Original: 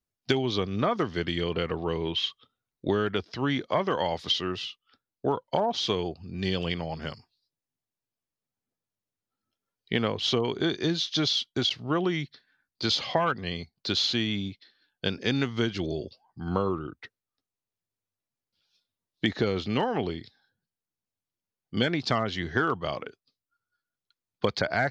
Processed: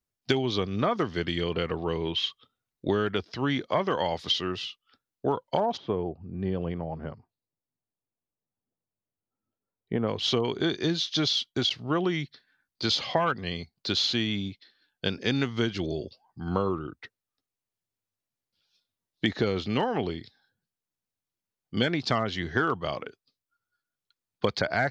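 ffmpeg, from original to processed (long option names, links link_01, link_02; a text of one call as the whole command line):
ffmpeg -i in.wav -filter_complex "[0:a]asplit=3[link_01][link_02][link_03];[link_01]afade=type=out:start_time=5.76:duration=0.02[link_04];[link_02]lowpass=1000,afade=type=in:start_time=5.76:duration=0.02,afade=type=out:start_time=10.07:duration=0.02[link_05];[link_03]afade=type=in:start_time=10.07:duration=0.02[link_06];[link_04][link_05][link_06]amix=inputs=3:normalize=0" out.wav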